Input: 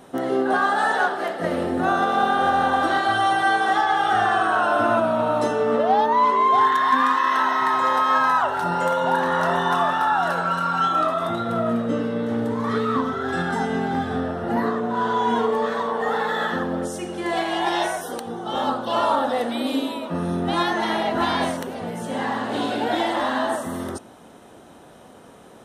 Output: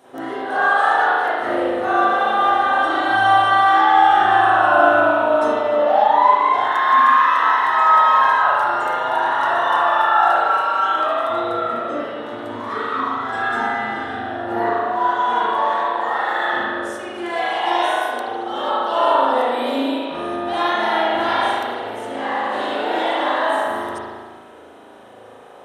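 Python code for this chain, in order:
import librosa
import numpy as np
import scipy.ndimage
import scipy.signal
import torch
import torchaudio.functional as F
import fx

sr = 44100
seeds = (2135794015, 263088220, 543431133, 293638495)

y = scipy.signal.sosfilt(scipy.signal.butter(2, 110.0, 'highpass', fs=sr, output='sos'), x)
y = fx.peak_eq(y, sr, hz=170.0, db=-12.5, octaves=0.94)
y = fx.rev_spring(y, sr, rt60_s=1.5, pass_ms=(37,), chirp_ms=40, drr_db=-9.5)
y = F.gain(torch.from_numpy(y), -5.0).numpy()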